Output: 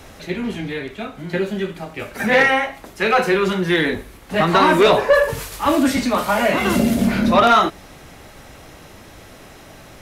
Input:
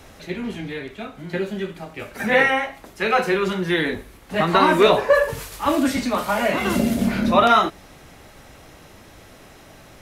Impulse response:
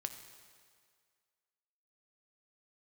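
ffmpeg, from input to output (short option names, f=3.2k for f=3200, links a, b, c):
-af "asoftclip=type=tanh:threshold=-9.5dB,volume=4dB"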